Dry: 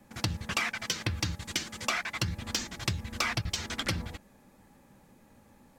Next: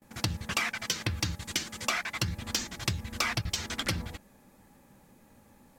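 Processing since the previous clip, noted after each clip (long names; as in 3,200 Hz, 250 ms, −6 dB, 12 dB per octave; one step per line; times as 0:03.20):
noise gate with hold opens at −51 dBFS
high-shelf EQ 9,100 Hz +5.5 dB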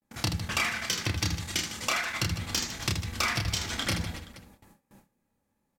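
reverse bouncing-ball delay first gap 30 ms, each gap 1.6×, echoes 5
noise gate with hold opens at −44 dBFS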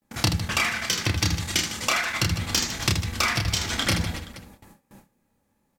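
speech leveller 0.5 s
level +5.5 dB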